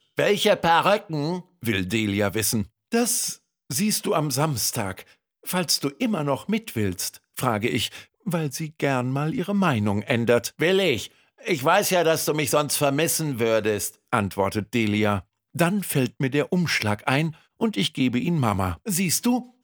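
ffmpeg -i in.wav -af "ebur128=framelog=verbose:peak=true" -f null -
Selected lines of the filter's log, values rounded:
Integrated loudness:
  I:         -23.5 LUFS
  Threshold: -33.6 LUFS
Loudness range:
  LRA:         3.8 LU
  Threshold: -43.8 LUFS
  LRA low:   -25.9 LUFS
  LRA high:  -22.0 LUFS
True peak:
  Peak:       -3.4 dBFS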